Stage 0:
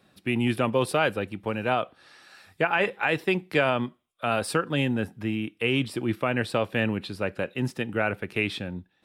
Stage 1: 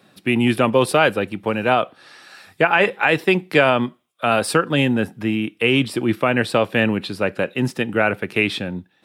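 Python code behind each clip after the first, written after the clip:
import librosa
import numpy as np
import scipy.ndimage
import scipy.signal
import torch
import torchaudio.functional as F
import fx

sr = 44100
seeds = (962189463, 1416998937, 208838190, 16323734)

y = scipy.signal.sosfilt(scipy.signal.butter(2, 120.0, 'highpass', fs=sr, output='sos'), x)
y = y * 10.0 ** (8.0 / 20.0)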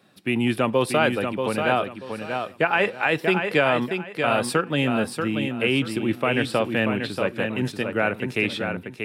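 y = fx.echo_feedback(x, sr, ms=635, feedback_pct=25, wet_db=-6)
y = y * 10.0 ** (-5.0 / 20.0)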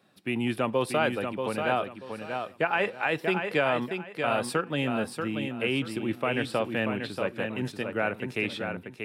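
y = fx.peak_eq(x, sr, hz=800.0, db=2.0, octaves=1.6)
y = y * 10.0 ** (-6.5 / 20.0)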